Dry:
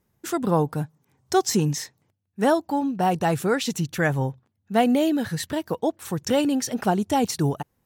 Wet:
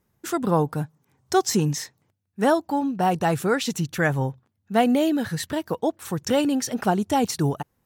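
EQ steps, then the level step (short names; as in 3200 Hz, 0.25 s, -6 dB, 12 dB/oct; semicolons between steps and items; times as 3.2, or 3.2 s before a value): bell 1300 Hz +2 dB; 0.0 dB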